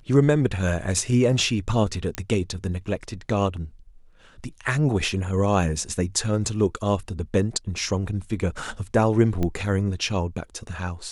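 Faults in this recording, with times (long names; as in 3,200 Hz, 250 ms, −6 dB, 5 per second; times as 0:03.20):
0:02.15: click −12 dBFS
0:09.43: click −14 dBFS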